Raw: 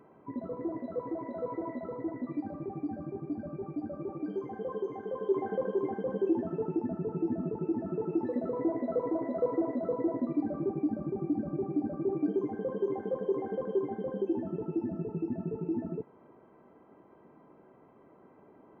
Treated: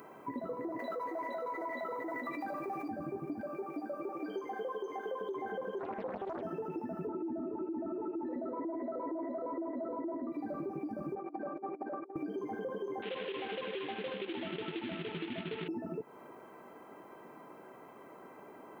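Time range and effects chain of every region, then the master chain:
0.79–2.88 HPF 900 Hz 6 dB/oct + fast leveller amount 70%
3.41–5.21 HPF 330 Hz + upward compressor, threshold -44 dBFS
5.79–6.43 high shelf 2600 Hz -10 dB + Doppler distortion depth 0.98 ms
7.07–10.32 Bessel low-pass 1600 Hz + bell 330 Hz +5.5 dB 0.76 oct + comb 3.2 ms, depth 85%
11.15–12.16 BPF 450–2000 Hz + negative-ratio compressor -43 dBFS, ratio -0.5
13.02–15.68 CVSD 16 kbps + high shelf 2400 Hz +8 dB
whole clip: tilt +3.5 dB/oct; limiter -32.5 dBFS; compressor, threshold -45 dBFS; gain +9 dB

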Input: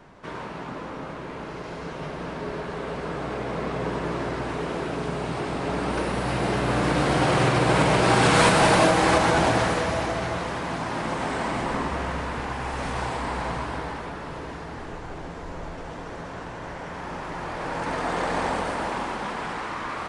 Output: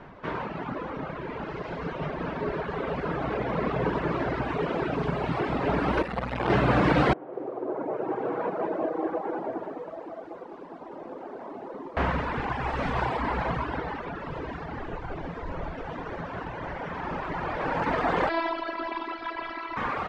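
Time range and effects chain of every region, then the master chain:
6.02–6.5 flutter echo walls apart 8.5 m, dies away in 0.63 s + core saturation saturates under 930 Hz
7.13–11.97 ladder band-pass 460 Hz, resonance 30% + lo-fi delay 0.202 s, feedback 35%, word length 9-bit, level -4 dB
18.29–19.77 HPF 170 Hz 6 dB/oct + resonant high shelf 5700 Hz -7.5 dB, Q 3 + robotiser 332 Hz
whole clip: reverb removal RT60 1.8 s; LPF 2900 Hz 12 dB/oct; gain +4.5 dB

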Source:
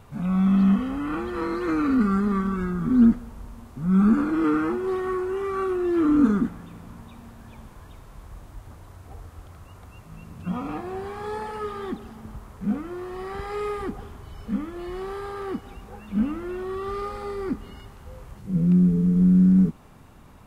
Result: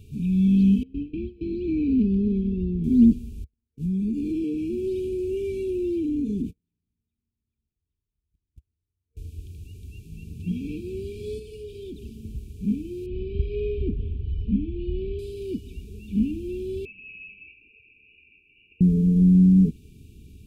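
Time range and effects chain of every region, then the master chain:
0.83–2.84 gate with hold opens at -20 dBFS, closes at -23 dBFS + hard clip -15 dBFS + air absorption 310 m
3.44–9.17 gate -34 dBFS, range -43 dB + compressor 12:1, threshold -23 dBFS
11.39–12.03 bell 220 Hz -10 dB 0.29 oct + compressor 5:1, threshold -33 dBFS
13.06–15.19 LPF 3200 Hz 24 dB/oct + low shelf 130 Hz +10 dB
16.85–18.81 steep high-pass 620 Hz 72 dB/oct + inverted band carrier 3400 Hz
whole clip: FFT band-reject 460–2300 Hz; bell 69 Hz +8 dB 1.1 oct

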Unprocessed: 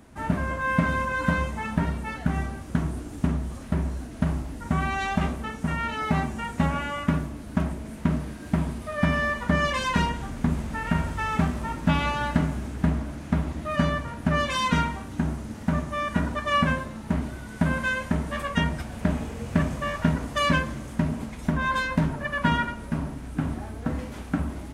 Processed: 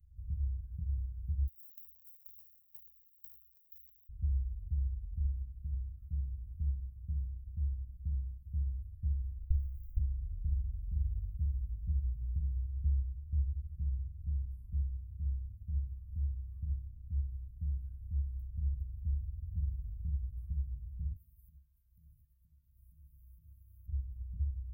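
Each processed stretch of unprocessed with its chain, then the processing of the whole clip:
1.47–4.09 half-waves squared off + HPF 1400 Hz
9.42–9.99 minimum comb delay 2.4 ms + three-band expander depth 40%
21.16–23.88 RIAA curve recording + compressor 4:1, threshold -38 dBFS
whole clip: inverse Chebyshev band-stop 350–6500 Hz, stop band 70 dB; high shelf 9100 Hz -6 dB; gain -1 dB

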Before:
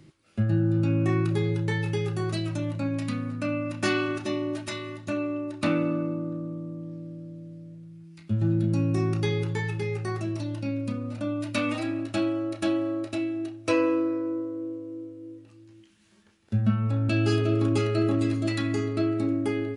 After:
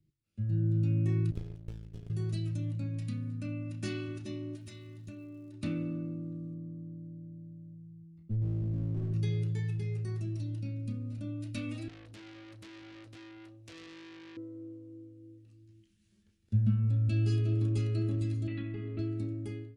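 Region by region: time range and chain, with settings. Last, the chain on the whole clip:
1.31–2.1 power-law curve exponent 3 + running maximum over 17 samples
4.55–5.53 compressor 2:1, threshold -37 dBFS + crackle 220/s -49 dBFS
6.54–9.14 polynomial smoothing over 65 samples + overloaded stage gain 26 dB
11.88–14.37 compressor 4:1, threshold -25 dBFS + core saturation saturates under 3500 Hz
18.47–18.99 steep low-pass 3200 Hz + bell 85 Hz -12 dB 0.84 oct + fast leveller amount 50%
whole clip: passive tone stack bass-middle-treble 10-0-1; de-hum 137.3 Hz, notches 3; AGC gain up to 16 dB; gain -6.5 dB

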